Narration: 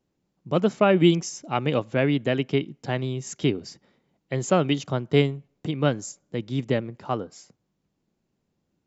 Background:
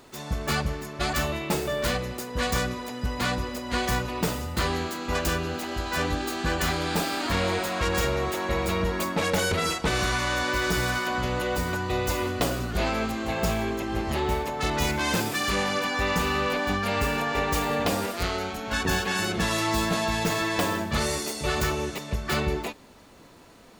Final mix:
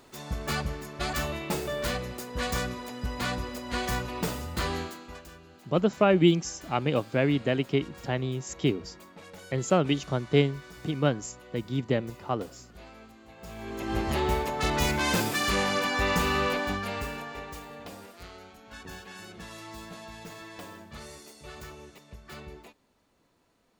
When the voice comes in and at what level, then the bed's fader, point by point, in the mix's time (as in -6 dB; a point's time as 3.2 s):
5.20 s, -2.5 dB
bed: 4.8 s -4 dB
5.28 s -22.5 dB
13.37 s -22.5 dB
13.91 s -0.5 dB
16.45 s -0.5 dB
17.7 s -18 dB